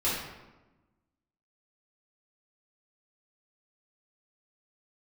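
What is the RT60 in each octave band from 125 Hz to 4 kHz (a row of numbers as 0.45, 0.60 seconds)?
1.4, 1.5, 1.2, 1.0, 0.90, 0.70 seconds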